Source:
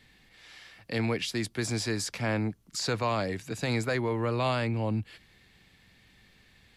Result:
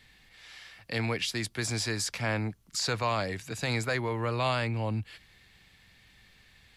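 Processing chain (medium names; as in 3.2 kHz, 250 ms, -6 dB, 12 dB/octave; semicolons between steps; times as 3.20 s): peaking EQ 280 Hz -6.5 dB 2.2 oct; trim +2 dB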